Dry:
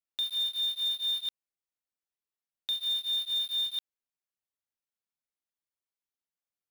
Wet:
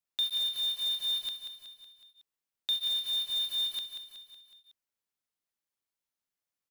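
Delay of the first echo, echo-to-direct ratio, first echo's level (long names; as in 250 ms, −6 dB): 185 ms, −7.0 dB, −8.5 dB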